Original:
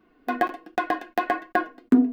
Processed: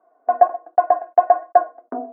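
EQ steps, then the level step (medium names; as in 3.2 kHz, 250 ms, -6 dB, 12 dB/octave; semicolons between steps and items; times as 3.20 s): resonant high-pass 660 Hz, resonance Q 8; low-pass 1.3 kHz 24 dB/octave; -2.0 dB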